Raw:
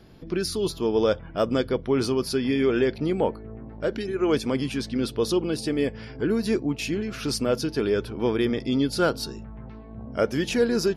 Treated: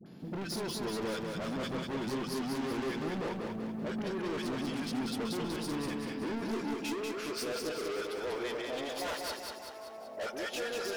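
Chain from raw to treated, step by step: 8.59–9.23 minimum comb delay 6.9 ms; high-pass sweep 180 Hz -> 650 Hz, 5.56–8.45; dispersion highs, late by 61 ms, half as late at 880 Hz; soft clip -32.5 dBFS, distortion -3 dB; lo-fi delay 0.191 s, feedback 55%, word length 11-bit, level -3.5 dB; gain -3 dB

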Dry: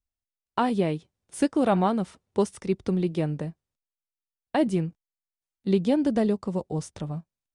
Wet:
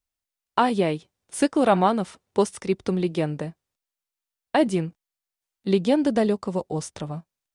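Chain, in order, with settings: low shelf 290 Hz -8.5 dB; gain +6 dB

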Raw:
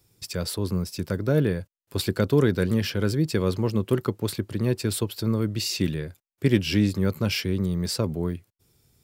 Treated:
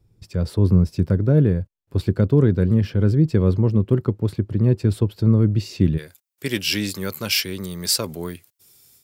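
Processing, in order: tilt -3.5 dB/oct, from 5.97 s +3 dB/oct; AGC gain up to 10 dB; gain -4.5 dB

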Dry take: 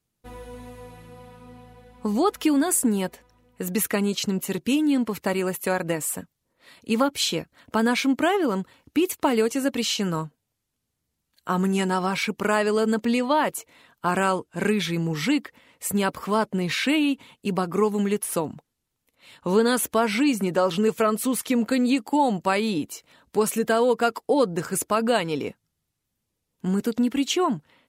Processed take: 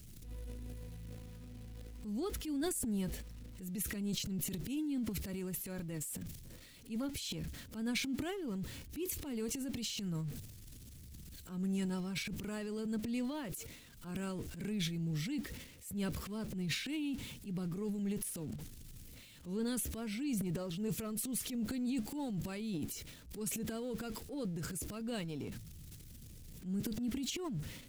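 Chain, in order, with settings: zero-crossing step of -36 dBFS; passive tone stack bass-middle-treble 10-0-1; transient shaper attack -8 dB, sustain +11 dB; gain +3.5 dB

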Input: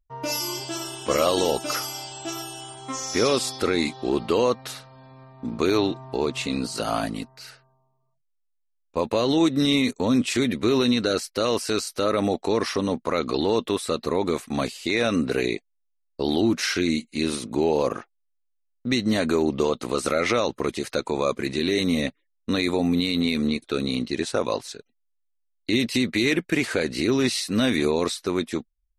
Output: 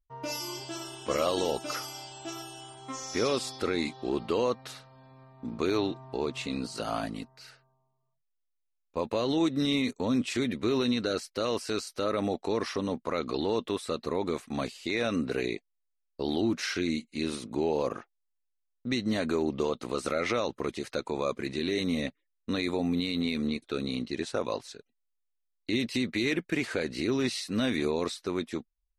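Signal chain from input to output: high shelf 9800 Hz -9 dB; gain -6.5 dB

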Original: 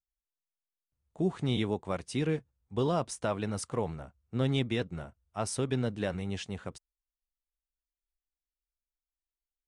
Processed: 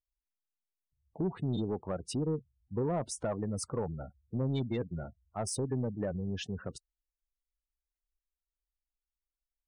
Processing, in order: spectral gate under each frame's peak -15 dB strong; dynamic EQ 1300 Hz, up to -4 dB, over -51 dBFS, Q 2.3; in parallel at +1 dB: compressor, threshold -37 dBFS, peak gain reduction 13 dB; on the sum: soft clip -21.5 dBFS, distortion -17 dB; gain -3 dB

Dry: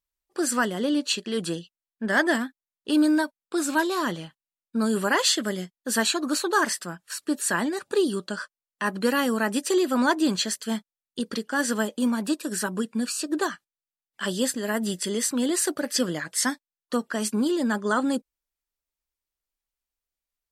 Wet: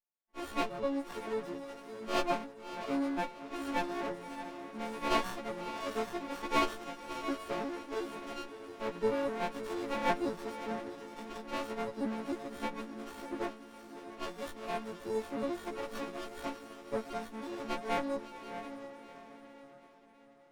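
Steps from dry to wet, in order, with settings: frequency quantiser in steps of 4 st; wah 0.64 Hz 460–1100 Hz, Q 2.1; diffused feedback echo 0.638 s, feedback 44%, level -9.5 dB; running maximum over 17 samples; gain -2.5 dB

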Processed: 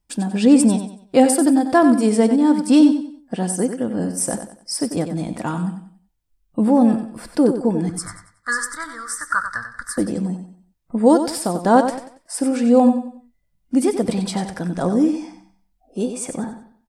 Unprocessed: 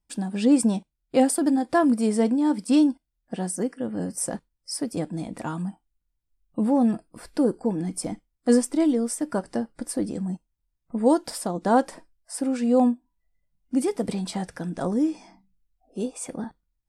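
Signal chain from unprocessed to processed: 7.89–9.98 EQ curve 120 Hz 0 dB, 200 Hz -25 dB, 350 Hz -29 dB, 790 Hz -18 dB, 1200 Hz +15 dB, 1800 Hz +13 dB, 2700 Hz -25 dB, 3800 Hz -3 dB, 7400 Hz -2 dB, 13000 Hz -5 dB; feedback echo 93 ms, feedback 33%, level -9 dB; gain +6 dB

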